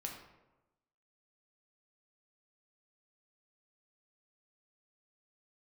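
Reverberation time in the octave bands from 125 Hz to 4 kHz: 1.1 s, 1.1 s, 1.1 s, 1.0 s, 0.80 s, 0.55 s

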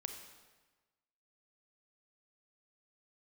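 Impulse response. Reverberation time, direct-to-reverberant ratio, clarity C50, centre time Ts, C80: 1.3 s, 5.0 dB, 6.5 dB, 29 ms, 8.0 dB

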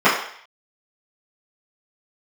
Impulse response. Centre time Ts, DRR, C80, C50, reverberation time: 40 ms, -14.0 dB, 8.0 dB, 4.5 dB, 0.60 s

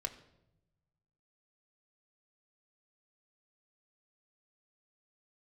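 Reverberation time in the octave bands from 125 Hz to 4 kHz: 1.9 s, 1.2 s, 1.0 s, 0.75 s, 0.65 s, 0.65 s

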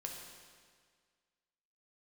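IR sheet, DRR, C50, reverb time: 0.5 dB, 3.0 dB, 1.8 s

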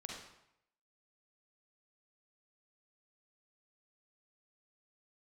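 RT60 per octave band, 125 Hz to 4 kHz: 0.80 s, 0.75 s, 0.75 s, 0.80 s, 0.75 s, 0.65 s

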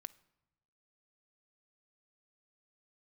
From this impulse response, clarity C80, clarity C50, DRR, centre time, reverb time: 23.5 dB, 20.0 dB, 12.5 dB, 2 ms, 0.95 s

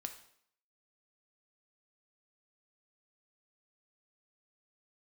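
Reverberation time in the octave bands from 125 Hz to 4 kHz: 0.60 s, 0.65 s, 0.65 s, 0.65 s, 0.60 s, 0.60 s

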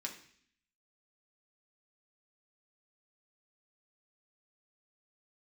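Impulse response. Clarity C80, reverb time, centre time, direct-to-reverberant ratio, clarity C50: 13.0 dB, 0.55 s, 16 ms, 0.0 dB, 9.5 dB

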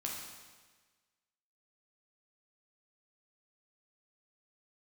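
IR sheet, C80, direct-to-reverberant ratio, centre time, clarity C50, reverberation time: 3.5 dB, -2.0 dB, 68 ms, 1.5 dB, 1.4 s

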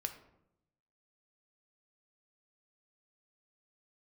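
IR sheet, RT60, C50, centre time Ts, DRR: 0.80 s, 10.5 dB, 11 ms, 6.0 dB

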